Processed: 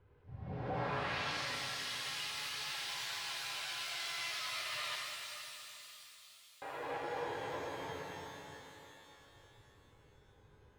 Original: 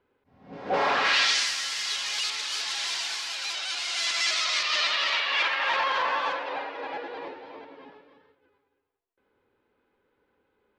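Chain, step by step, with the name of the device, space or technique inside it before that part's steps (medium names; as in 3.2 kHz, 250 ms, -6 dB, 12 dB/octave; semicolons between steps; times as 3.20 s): jukebox (low-pass 5.4 kHz; resonant low shelf 170 Hz +9.5 dB, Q 3; compression 4:1, threshold -42 dBFS, peak gain reduction 18 dB); 4.95–6.62 s: inverse Chebyshev high-pass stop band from 1.7 kHz, stop band 50 dB; tilt EQ -1.5 dB/octave; pitch-shifted reverb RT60 3.3 s, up +12 st, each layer -8 dB, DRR -2 dB; trim -1 dB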